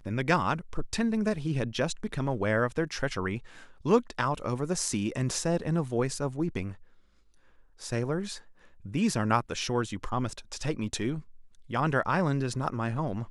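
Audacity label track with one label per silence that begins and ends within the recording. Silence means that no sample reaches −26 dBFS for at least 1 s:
6.680000	7.920000	silence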